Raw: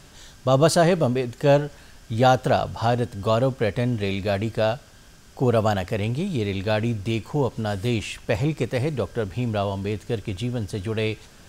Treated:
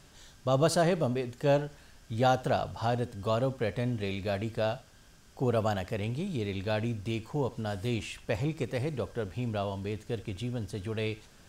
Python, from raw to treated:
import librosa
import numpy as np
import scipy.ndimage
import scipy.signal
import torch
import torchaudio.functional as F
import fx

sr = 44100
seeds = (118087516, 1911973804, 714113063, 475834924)

y = x + 10.0 ** (-19.0 / 20.0) * np.pad(x, (int(74 * sr / 1000.0), 0))[:len(x)]
y = F.gain(torch.from_numpy(y), -8.0).numpy()